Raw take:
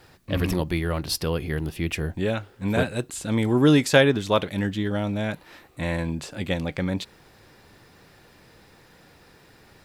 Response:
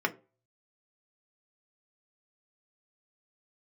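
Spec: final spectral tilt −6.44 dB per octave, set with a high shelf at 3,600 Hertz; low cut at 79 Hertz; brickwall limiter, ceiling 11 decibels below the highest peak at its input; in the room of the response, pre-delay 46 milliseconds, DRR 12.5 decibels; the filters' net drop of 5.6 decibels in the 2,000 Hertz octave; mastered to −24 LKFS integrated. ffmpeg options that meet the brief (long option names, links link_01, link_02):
-filter_complex "[0:a]highpass=79,equalizer=frequency=2000:width_type=o:gain=-5.5,highshelf=frequency=3600:gain=-7,alimiter=limit=-15.5dB:level=0:latency=1,asplit=2[link_01][link_02];[1:a]atrim=start_sample=2205,adelay=46[link_03];[link_02][link_03]afir=irnorm=-1:irlink=0,volume=-21.5dB[link_04];[link_01][link_04]amix=inputs=2:normalize=0,volume=4.5dB"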